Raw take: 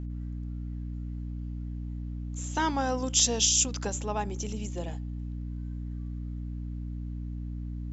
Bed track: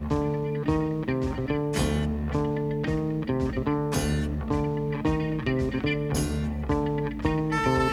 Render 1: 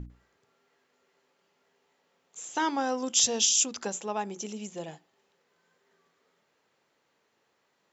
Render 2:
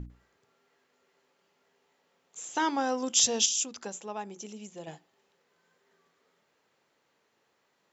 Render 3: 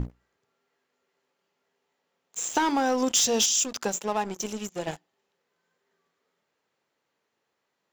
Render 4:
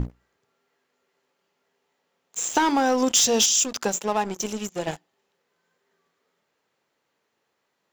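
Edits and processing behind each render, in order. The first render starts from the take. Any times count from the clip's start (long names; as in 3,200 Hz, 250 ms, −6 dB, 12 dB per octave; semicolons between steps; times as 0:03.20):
mains-hum notches 60/120/180/240/300/360 Hz
0:03.46–0:04.87: clip gain −5.5 dB
leveller curve on the samples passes 3; downward compressor 6 to 1, threshold −21 dBFS, peak gain reduction 7.5 dB
level +3.5 dB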